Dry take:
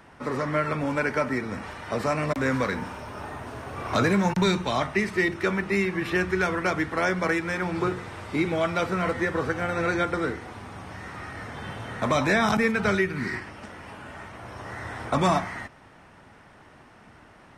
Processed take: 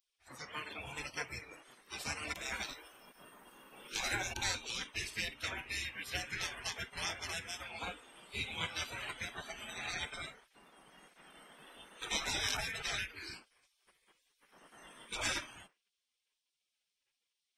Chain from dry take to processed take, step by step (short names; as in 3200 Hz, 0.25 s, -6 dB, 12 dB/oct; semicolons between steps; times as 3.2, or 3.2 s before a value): spectral noise reduction 20 dB; notches 60/120/180/240/300 Hz; spectral gate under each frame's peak -20 dB weak; gain +1 dB